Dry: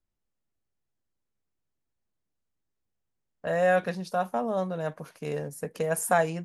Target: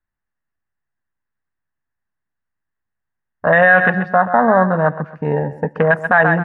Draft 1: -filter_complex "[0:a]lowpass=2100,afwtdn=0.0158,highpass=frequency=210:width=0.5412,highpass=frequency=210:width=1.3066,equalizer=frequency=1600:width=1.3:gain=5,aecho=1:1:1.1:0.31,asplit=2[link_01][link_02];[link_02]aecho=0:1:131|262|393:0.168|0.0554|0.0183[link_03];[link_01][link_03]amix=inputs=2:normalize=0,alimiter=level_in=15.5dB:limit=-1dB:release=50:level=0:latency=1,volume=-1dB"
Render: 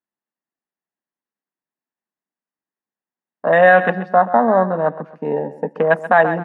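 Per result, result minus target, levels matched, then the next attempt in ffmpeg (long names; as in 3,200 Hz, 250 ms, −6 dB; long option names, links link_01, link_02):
2,000 Hz band −4.0 dB; 250 Hz band −2.5 dB
-filter_complex "[0:a]lowpass=2100,afwtdn=0.0158,highpass=frequency=210:width=0.5412,highpass=frequency=210:width=1.3066,equalizer=frequency=1600:width=1.3:gain=15.5,aecho=1:1:1.1:0.31,asplit=2[link_01][link_02];[link_02]aecho=0:1:131|262|393:0.168|0.0554|0.0183[link_03];[link_01][link_03]amix=inputs=2:normalize=0,alimiter=level_in=15.5dB:limit=-1dB:release=50:level=0:latency=1,volume=-1dB"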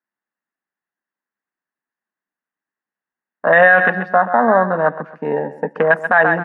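250 Hz band −4.5 dB
-filter_complex "[0:a]lowpass=2100,afwtdn=0.0158,equalizer=frequency=1600:width=1.3:gain=15.5,aecho=1:1:1.1:0.31,asplit=2[link_01][link_02];[link_02]aecho=0:1:131|262|393:0.168|0.0554|0.0183[link_03];[link_01][link_03]amix=inputs=2:normalize=0,alimiter=level_in=15.5dB:limit=-1dB:release=50:level=0:latency=1,volume=-1dB"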